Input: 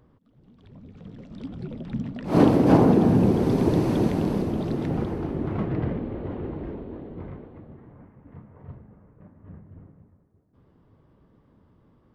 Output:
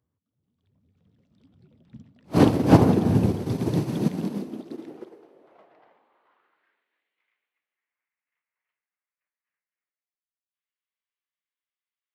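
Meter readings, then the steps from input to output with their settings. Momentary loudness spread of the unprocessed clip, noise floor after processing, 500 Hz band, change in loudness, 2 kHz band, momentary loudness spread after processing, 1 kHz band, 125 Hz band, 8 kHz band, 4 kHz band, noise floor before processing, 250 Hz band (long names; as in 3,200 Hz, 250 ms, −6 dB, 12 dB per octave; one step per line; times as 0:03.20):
21 LU, below −85 dBFS, −3.5 dB, +1.5 dB, −0.5 dB, 20 LU, −1.5 dB, −0.5 dB, can't be measured, +2.0 dB, −61 dBFS, −2.5 dB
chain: high-shelf EQ 2,600 Hz +10 dB
high-pass filter sweep 84 Hz → 2,300 Hz, 0:03.30–0:07.13
expander for the loud parts 2.5 to 1, over −29 dBFS
level +3 dB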